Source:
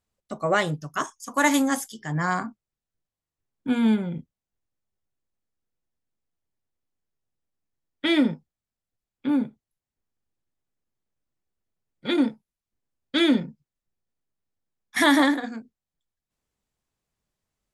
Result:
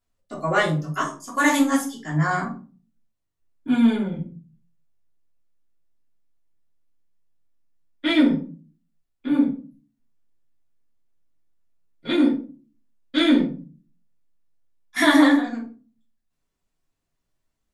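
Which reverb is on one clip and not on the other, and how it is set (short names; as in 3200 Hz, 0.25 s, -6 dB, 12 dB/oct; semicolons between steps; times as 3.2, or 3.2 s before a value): shoebox room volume 210 m³, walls furnished, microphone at 3.1 m; gain -5 dB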